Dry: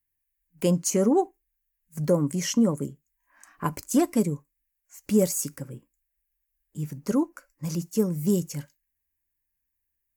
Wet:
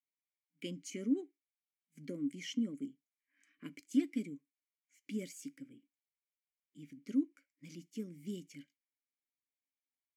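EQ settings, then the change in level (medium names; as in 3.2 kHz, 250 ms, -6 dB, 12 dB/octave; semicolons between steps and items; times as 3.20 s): vowel filter i; tilt EQ +2 dB/octave; -1.0 dB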